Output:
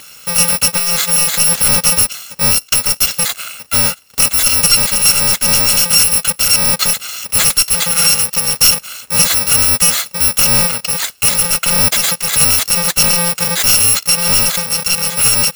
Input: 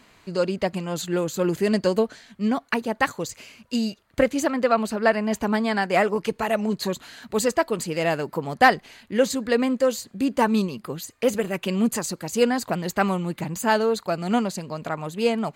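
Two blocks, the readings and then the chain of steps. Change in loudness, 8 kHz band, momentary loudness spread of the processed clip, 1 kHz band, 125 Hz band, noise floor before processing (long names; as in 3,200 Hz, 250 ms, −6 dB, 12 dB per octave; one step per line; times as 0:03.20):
+14.0 dB, +25.5 dB, 6 LU, +1.5 dB, +7.5 dB, −58 dBFS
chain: samples in bit-reversed order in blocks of 128 samples
mid-hump overdrive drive 23 dB, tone 7,200 Hz, clips at −4 dBFS
level +4.5 dB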